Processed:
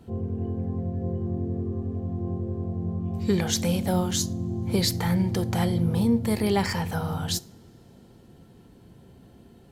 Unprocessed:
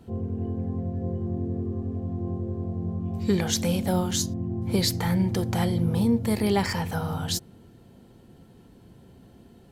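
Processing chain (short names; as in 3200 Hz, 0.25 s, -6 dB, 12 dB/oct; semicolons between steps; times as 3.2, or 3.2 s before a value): two-slope reverb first 0.43 s, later 4 s, from -21 dB, DRR 19 dB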